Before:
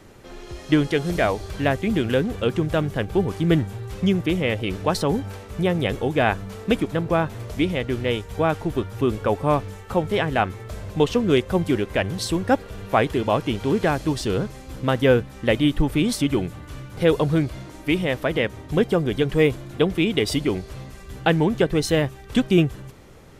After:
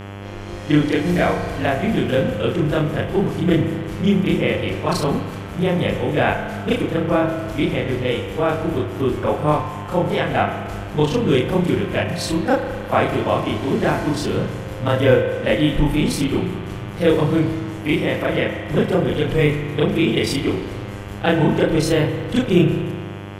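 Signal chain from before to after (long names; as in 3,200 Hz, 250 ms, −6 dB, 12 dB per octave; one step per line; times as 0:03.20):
every overlapping window played backwards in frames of 80 ms
spring reverb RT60 1.6 s, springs 34 ms, chirp 55 ms, DRR 6 dB
hum with harmonics 100 Hz, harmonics 34, −38 dBFS −5 dB per octave
level +4.5 dB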